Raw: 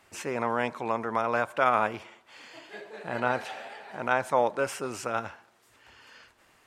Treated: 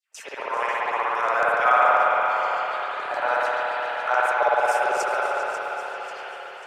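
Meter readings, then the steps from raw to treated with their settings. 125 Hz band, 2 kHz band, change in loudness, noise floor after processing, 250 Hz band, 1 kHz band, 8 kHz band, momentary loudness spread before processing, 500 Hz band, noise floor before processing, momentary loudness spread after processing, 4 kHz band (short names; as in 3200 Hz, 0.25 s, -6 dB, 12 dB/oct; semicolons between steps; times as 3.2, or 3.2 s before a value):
under -15 dB, +9.0 dB, +6.5 dB, -40 dBFS, -9.5 dB, +9.0 dB, +2.5 dB, 19 LU, +5.0 dB, -63 dBFS, 14 LU, +6.5 dB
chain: bell 160 Hz -13 dB 2.5 oct; AGC gain up to 3.5 dB; LFO high-pass saw down 7 Hz 440–6400 Hz; on a send: echo with dull and thin repeats by turns 0.197 s, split 860 Hz, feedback 68%, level -11 dB; on the sum: dynamic EQ 3000 Hz, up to -7 dB, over -41 dBFS, Q 1; in parallel at -3 dB: level quantiser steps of 16 dB; on the sum: HPF 75 Hz; spring tank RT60 3.7 s, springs 57 ms, chirp 65 ms, DRR -8.5 dB; gate with hold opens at -31 dBFS; warbling echo 0.542 s, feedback 50%, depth 63 cents, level -11.5 dB; gain -5 dB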